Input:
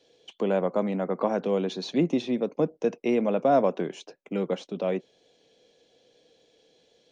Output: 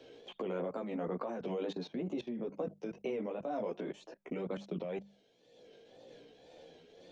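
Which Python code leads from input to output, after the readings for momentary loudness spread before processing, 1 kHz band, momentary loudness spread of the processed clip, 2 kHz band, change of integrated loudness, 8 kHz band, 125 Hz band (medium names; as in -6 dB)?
10 LU, -14.0 dB, 19 LU, -11.0 dB, -12.5 dB, no reading, -11.0 dB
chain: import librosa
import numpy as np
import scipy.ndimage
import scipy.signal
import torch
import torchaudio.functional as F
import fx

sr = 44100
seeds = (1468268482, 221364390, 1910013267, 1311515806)

y = fx.chorus_voices(x, sr, voices=2, hz=0.43, base_ms=15, depth_ms=3.9, mix_pct=50)
y = fx.level_steps(y, sr, step_db=20)
y = fx.wow_flutter(y, sr, seeds[0], rate_hz=2.1, depth_cents=100.0)
y = fx.high_shelf(y, sr, hz=4500.0, db=-5.0)
y = fx.hum_notches(y, sr, base_hz=50, count=4)
y = fx.tremolo_shape(y, sr, shape='triangle', hz=2.0, depth_pct=55)
y = fx.band_squash(y, sr, depth_pct=70)
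y = F.gain(torch.from_numpy(y), 6.0).numpy()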